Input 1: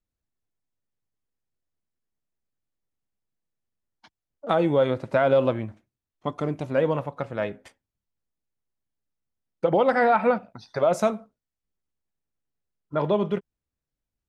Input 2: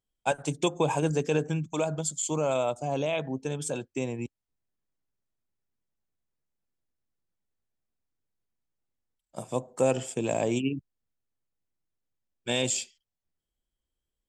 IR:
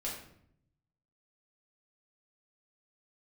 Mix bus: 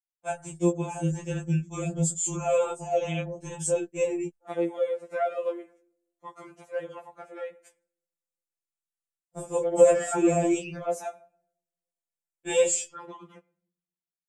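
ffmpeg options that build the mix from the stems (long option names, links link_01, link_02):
-filter_complex "[0:a]highpass=420,volume=-13dB,asplit=2[link_01][link_02];[link_02]volume=-18.5dB[link_03];[1:a]agate=range=-33dB:threshold=-41dB:ratio=3:detection=peak,highshelf=frequency=4700:gain=-11,flanger=delay=17.5:depth=7.4:speed=1.4,volume=3dB[link_04];[2:a]atrim=start_sample=2205[link_05];[link_03][link_05]afir=irnorm=-1:irlink=0[link_06];[link_01][link_04][link_06]amix=inputs=3:normalize=0,dynaudnorm=framelen=370:gausssize=9:maxgain=8.5dB,equalizer=frequency=1000:width_type=o:width=1:gain=-6,equalizer=frequency=4000:width_type=o:width=1:gain=-11,equalizer=frequency=8000:width_type=o:width=1:gain=10,afftfilt=real='re*2.83*eq(mod(b,8),0)':imag='im*2.83*eq(mod(b,8),0)':win_size=2048:overlap=0.75"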